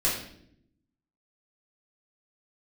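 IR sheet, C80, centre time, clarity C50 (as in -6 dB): 7.5 dB, 41 ms, 4.0 dB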